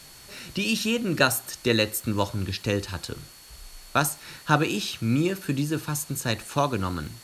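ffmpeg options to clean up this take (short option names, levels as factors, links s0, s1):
-af "adeclick=t=4,bandreject=f=4400:w=30,afftdn=nr=24:nf=-47"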